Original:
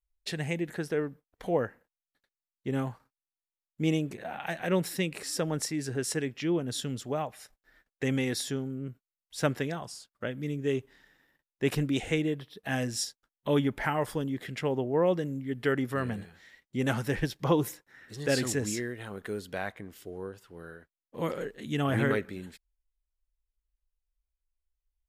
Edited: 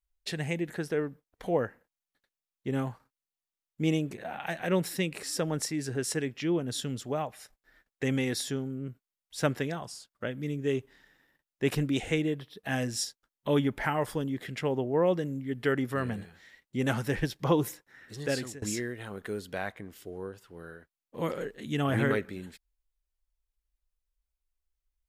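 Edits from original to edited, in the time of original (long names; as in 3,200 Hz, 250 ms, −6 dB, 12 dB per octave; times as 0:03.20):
0:18.17–0:18.62: fade out, to −23 dB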